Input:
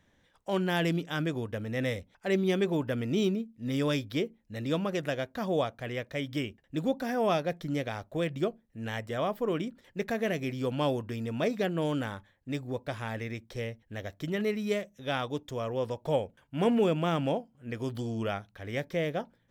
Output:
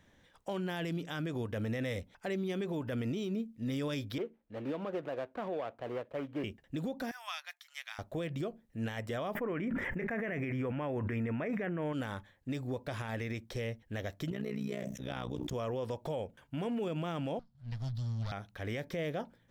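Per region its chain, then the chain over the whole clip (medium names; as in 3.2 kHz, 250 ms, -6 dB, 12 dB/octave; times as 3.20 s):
4.18–6.44 s: median filter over 25 samples + three-band isolator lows -13 dB, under 310 Hz, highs -15 dB, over 3.2 kHz
7.11–7.99 s: Bessel high-pass 1.7 kHz, order 8 + upward expansion, over -49 dBFS
9.35–11.93 s: resonant high shelf 2.9 kHz -12.5 dB, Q 3 + band-stop 4.2 kHz, Q 6.2 + level flattener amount 100%
14.30–15.54 s: AM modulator 61 Hz, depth 85% + peaking EQ 140 Hz +5.5 dB 2.2 oct + decay stretcher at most 90 dB/s
17.39–18.32 s: comb filter that takes the minimum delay 0.54 ms + FFT filter 130 Hz 0 dB, 230 Hz -13 dB, 400 Hz -29 dB, 630 Hz -12 dB, 2.7 kHz -15 dB, 4.4 kHz +1 dB, 8 kHz -16 dB
whole clip: compression, threshold -30 dBFS; peak limiter -31 dBFS; trim +2.5 dB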